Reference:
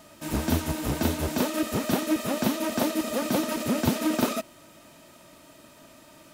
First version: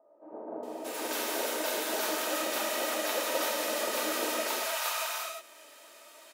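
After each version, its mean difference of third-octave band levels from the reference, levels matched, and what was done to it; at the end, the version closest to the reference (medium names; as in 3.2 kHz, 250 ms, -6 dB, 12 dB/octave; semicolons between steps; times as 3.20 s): 11.5 dB: high-pass 450 Hz 24 dB/octave; bands offset in time lows, highs 630 ms, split 760 Hz; gated-style reverb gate 390 ms flat, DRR -4 dB; trim -4 dB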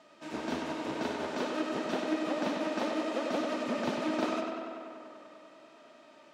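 7.5 dB: high-pass 310 Hz 12 dB/octave; distance through air 130 m; tape echo 98 ms, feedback 84%, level -4 dB, low-pass 4.6 kHz; trim -5 dB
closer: second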